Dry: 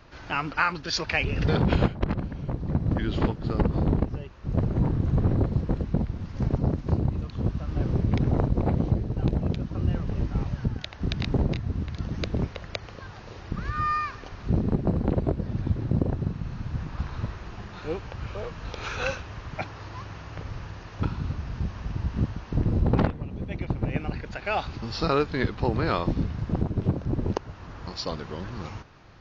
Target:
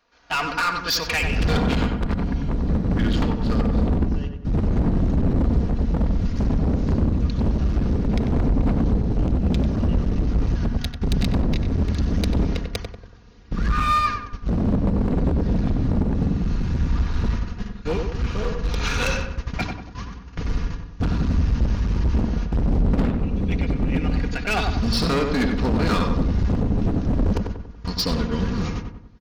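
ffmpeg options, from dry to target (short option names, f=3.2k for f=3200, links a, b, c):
-filter_complex "[0:a]agate=range=-20dB:threshold=-36dB:ratio=16:detection=peak,bass=f=250:g=-14,treble=f=4k:g=5,aecho=1:1:4.2:0.56,asubboost=boost=11.5:cutoff=180,alimiter=limit=-14dB:level=0:latency=1:release=233,volume=25.5dB,asoftclip=hard,volume=-25.5dB,asplit=2[a][b];[b]adelay=94,lowpass=f=1.8k:p=1,volume=-4dB,asplit=2[c][d];[d]adelay=94,lowpass=f=1.8k:p=1,volume=0.48,asplit=2[e][f];[f]adelay=94,lowpass=f=1.8k:p=1,volume=0.48,asplit=2[g][h];[h]adelay=94,lowpass=f=1.8k:p=1,volume=0.48,asplit=2[i][j];[j]adelay=94,lowpass=f=1.8k:p=1,volume=0.48,asplit=2[k][l];[l]adelay=94,lowpass=f=1.8k:p=1,volume=0.48[m];[c][e][g][i][k][m]amix=inputs=6:normalize=0[n];[a][n]amix=inputs=2:normalize=0,volume=7dB"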